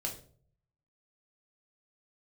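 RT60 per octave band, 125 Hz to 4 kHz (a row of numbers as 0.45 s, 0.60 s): 0.95 s, 0.60 s, 0.60 s, 0.40 s, 0.35 s, 0.35 s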